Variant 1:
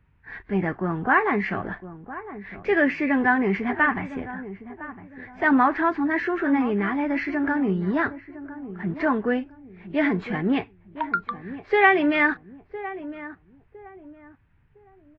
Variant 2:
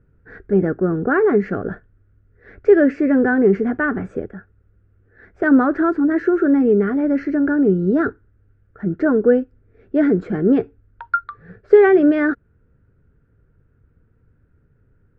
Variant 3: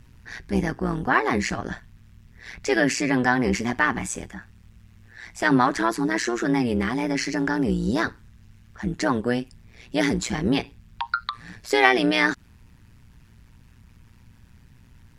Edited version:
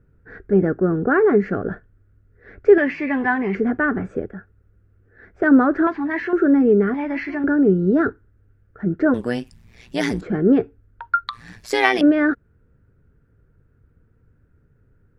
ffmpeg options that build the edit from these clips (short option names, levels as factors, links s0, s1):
-filter_complex "[0:a]asplit=3[s0][s1][s2];[2:a]asplit=2[s3][s4];[1:a]asplit=6[s5][s6][s7][s8][s9][s10];[s5]atrim=end=2.782[s11];[s0]atrim=start=2.778:end=3.552[s12];[s6]atrim=start=3.548:end=5.872[s13];[s1]atrim=start=5.868:end=6.332[s14];[s7]atrim=start=6.328:end=6.942[s15];[s2]atrim=start=6.938:end=7.442[s16];[s8]atrim=start=7.438:end=9.142[s17];[s3]atrim=start=9.138:end=10.212[s18];[s9]atrim=start=10.208:end=11.282[s19];[s4]atrim=start=11.278:end=12.012[s20];[s10]atrim=start=12.008[s21];[s11][s12]acrossfade=d=0.004:c1=hsin:c2=hsin[s22];[s22][s13]acrossfade=d=0.004:c1=hsin:c2=hsin[s23];[s23][s14]acrossfade=d=0.004:c1=hsin:c2=hsin[s24];[s24][s15]acrossfade=d=0.004:c1=hsin:c2=hsin[s25];[s25][s16]acrossfade=d=0.004:c1=hsin:c2=hsin[s26];[s26][s17]acrossfade=d=0.004:c1=hsin:c2=hsin[s27];[s27][s18]acrossfade=d=0.004:c1=hsin:c2=hsin[s28];[s28][s19]acrossfade=d=0.004:c1=hsin:c2=hsin[s29];[s29][s20]acrossfade=d=0.004:c1=hsin:c2=hsin[s30];[s30][s21]acrossfade=d=0.004:c1=hsin:c2=hsin"